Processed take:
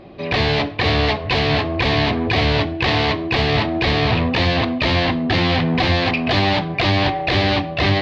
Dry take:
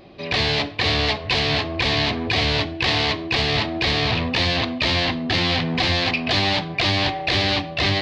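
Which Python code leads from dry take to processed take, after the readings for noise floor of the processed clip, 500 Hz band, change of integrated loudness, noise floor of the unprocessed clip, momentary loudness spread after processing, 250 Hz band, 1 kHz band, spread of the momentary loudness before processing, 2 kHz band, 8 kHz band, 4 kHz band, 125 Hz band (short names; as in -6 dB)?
-27 dBFS, +5.0 dB, +2.0 dB, -32 dBFS, 2 LU, +5.5 dB, +4.5 dB, 2 LU, +1.5 dB, n/a, -1.5 dB, +5.5 dB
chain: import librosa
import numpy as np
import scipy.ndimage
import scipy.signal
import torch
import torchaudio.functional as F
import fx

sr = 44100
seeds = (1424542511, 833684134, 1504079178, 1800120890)

y = fx.lowpass(x, sr, hz=1800.0, slope=6)
y = F.gain(torch.from_numpy(y), 5.5).numpy()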